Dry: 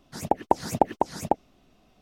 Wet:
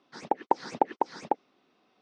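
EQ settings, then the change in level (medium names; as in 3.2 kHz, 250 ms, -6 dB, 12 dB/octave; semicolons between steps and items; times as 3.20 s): distance through air 110 m; cabinet simulation 380–7700 Hz, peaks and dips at 650 Hz -9 dB, 2.9 kHz -4 dB, 7 kHz -7 dB; 0.0 dB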